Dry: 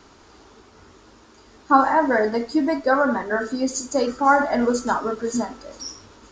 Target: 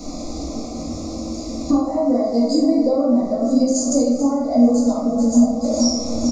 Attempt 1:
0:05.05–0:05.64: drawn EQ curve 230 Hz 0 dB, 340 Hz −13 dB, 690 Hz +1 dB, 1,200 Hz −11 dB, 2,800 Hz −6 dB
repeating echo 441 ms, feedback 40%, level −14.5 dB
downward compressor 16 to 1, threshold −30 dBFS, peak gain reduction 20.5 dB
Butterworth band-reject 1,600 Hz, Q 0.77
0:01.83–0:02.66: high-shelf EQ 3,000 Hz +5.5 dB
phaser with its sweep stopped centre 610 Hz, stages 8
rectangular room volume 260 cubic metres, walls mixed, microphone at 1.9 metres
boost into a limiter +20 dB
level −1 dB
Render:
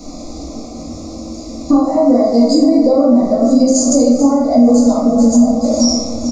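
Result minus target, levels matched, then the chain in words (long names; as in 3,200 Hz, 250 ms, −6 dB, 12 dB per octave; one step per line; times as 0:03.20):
downward compressor: peak gain reduction −7.5 dB
0:05.05–0:05.64: drawn EQ curve 230 Hz 0 dB, 340 Hz −13 dB, 690 Hz +1 dB, 1,200 Hz −11 dB, 2,800 Hz −6 dB
repeating echo 441 ms, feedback 40%, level −14.5 dB
downward compressor 16 to 1, threshold −38 dBFS, peak gain reduction 28 dB
Butterworth band-reject 1,600 Hz, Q 0.77
0:01.83–0:02.66: high-shelf EQ 3,000 Hz +5.5 dB
phaser with its sweep stopped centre 610 Hz, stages 8
rectangular room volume 260 cubic metres, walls mixed, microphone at 1.9 metres
boost into a limiter +20 dB
level −1 dB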